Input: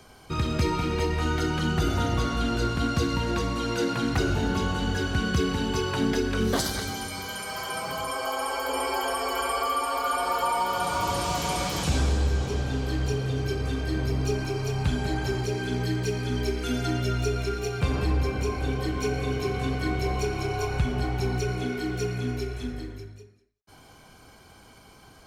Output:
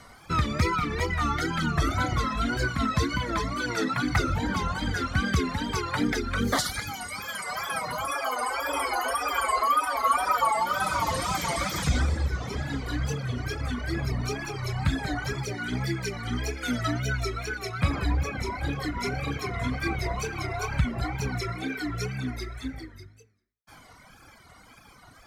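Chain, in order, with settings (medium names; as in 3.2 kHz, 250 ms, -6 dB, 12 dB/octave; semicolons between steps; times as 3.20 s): reverb removal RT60 1.5 s; graphic EQ with 31 bands 400 Hz -8 dB, 1.25 kHz +7 dB, 2 kHz +9 dB; wow and flutter 130 cents; band-stop 2.8 kHz, Q 10; trim +1.5 dB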